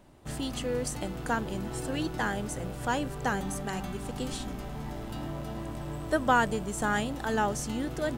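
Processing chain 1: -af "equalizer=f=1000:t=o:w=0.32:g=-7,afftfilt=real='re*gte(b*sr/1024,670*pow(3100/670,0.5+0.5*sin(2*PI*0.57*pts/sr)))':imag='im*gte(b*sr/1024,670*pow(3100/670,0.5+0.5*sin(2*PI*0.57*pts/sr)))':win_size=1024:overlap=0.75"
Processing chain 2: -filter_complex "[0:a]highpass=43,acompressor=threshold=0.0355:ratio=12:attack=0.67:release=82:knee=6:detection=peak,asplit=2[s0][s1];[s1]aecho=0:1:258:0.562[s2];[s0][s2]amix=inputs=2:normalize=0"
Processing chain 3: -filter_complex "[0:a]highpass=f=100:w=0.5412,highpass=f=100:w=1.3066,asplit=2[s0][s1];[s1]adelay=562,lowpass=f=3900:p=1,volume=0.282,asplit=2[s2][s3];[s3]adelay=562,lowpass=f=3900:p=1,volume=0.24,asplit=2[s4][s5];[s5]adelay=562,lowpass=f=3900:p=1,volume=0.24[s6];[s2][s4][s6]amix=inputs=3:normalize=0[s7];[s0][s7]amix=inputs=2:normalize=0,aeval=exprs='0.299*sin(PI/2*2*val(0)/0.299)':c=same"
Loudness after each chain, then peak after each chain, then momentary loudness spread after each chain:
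-37.5 LUFS, -36.0 LUFS, -23.0 LUFS; -16.5 dBFS, -23.0 dBFS, -10.5 dBFS; 16 LU, 4 LU, 9 LU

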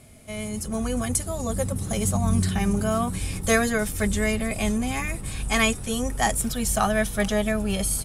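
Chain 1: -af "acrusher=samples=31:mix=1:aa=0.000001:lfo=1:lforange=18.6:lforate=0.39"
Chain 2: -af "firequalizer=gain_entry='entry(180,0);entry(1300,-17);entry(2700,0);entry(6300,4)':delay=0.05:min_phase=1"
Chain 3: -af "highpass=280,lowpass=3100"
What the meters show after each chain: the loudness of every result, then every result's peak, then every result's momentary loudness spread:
-25.5 LUFS, -25.0 LUFS, -28.5 LUFS; -10.0 dBFS, -4.5 dBFS, -10.5 dBFS; 7 LU, 6 LU, 10 LU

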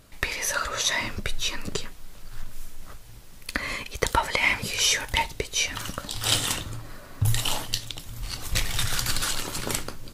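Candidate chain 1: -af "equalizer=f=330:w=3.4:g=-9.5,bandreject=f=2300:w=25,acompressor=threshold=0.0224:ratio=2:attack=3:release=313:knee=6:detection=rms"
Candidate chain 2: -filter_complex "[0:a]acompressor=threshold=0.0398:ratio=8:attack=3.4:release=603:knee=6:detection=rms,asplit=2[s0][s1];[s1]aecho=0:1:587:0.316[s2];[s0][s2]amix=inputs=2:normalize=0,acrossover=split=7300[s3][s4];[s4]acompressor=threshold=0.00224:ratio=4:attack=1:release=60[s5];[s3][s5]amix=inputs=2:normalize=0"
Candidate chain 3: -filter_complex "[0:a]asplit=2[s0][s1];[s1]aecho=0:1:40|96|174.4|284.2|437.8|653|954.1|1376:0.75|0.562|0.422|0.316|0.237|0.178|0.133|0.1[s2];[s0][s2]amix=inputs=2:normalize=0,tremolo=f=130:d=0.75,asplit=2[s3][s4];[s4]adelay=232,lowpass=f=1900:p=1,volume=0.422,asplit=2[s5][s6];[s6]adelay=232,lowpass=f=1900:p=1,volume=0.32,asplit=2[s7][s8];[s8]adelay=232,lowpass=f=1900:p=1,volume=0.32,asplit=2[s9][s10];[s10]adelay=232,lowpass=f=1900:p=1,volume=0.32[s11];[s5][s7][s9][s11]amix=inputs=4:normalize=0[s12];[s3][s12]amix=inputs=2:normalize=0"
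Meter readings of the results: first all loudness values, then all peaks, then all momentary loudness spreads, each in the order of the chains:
-35.0 LUFS, -38.0 LUFS, -26.0 LUFS; -13.0 dBFS, -13.5 dBFS, -4.5 dBFS; 17 LU, 12 LU, 15 LU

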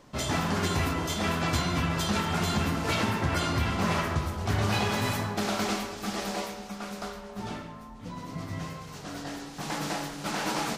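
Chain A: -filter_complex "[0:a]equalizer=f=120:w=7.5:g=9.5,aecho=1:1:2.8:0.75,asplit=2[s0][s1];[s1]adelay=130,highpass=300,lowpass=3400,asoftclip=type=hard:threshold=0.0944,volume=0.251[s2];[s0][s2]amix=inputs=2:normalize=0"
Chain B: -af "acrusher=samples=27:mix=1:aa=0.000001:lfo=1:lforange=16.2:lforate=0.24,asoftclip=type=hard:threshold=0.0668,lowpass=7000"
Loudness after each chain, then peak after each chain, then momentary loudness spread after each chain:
-28.0 LUFS, -31.5 LUFS; -12.0 dBFS, -22.5 dBFS; 13 LU, 10 LU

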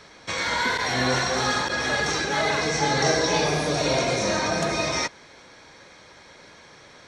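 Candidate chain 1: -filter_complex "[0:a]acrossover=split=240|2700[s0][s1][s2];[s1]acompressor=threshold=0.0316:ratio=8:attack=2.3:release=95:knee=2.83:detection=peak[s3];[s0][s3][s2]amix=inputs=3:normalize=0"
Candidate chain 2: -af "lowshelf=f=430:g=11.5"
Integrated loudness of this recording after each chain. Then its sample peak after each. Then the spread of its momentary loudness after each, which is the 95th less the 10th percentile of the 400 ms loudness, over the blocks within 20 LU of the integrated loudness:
-27.0 LUFS, -19.5 LUFS; -13.5 dBFS, -4.0 dBFS; 3 LU, 6 LU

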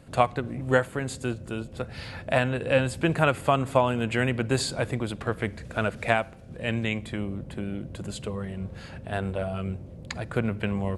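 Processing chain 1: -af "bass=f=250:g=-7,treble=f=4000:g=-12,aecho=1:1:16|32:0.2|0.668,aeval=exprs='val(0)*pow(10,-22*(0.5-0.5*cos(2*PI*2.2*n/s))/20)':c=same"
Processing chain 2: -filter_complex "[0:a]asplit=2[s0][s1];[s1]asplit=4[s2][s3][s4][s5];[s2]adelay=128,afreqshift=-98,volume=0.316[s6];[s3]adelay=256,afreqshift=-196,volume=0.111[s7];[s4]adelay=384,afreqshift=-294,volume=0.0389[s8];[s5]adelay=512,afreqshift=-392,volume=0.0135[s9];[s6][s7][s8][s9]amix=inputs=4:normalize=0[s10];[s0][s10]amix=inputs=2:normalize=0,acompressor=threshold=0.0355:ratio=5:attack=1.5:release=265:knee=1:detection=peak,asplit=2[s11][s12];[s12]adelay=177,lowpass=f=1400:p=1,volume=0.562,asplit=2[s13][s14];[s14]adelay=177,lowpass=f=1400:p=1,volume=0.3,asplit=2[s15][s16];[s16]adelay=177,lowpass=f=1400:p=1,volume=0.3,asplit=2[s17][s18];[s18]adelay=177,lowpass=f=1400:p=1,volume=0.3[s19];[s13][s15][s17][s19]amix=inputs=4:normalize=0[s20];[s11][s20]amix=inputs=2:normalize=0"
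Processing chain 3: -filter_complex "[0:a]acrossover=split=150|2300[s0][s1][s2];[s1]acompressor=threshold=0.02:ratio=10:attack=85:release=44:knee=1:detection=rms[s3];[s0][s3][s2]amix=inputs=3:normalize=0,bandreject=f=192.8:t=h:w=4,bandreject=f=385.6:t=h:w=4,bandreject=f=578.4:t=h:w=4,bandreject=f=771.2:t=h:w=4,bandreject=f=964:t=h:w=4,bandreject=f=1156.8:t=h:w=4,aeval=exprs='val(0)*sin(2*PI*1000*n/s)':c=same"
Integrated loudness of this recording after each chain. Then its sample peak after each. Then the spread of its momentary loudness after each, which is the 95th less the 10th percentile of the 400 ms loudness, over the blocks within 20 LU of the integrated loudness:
-34.5 LUFS, -35.5 LUFS, -34.0 LUFS; -9.0 dBFS, -18.0 dBFS, -12.5 dBFS; 16 LU, 3 LU, 8 LU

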